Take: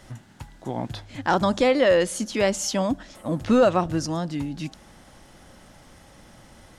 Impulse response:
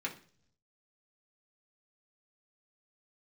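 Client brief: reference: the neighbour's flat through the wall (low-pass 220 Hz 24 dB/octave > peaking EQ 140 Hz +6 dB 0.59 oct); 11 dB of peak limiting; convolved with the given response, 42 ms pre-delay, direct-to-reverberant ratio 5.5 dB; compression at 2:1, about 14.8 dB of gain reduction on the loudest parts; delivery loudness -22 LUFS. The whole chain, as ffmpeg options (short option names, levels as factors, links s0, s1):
-filter_complex "[0:a]acompressor=threshold=0.00794:ratio=2,alimiter=level_in=2.37:limit=0.0631:level=0:latency=1,volume=0.422,asplit=2[s0][s1];[1:a]atrim=start_sample=2205,adelay=42[s2];[s1][s2]afir=irnorm=-1:irlink=0,volume=0.376[s3];[s0][s3]amix=inputs=2:normalize=0,lowpass=f=220:w=0.5412,lowpass=f=220:w=1.3066,equalizer=f=140:t=o:w=0.59:g=6,volume=13.3"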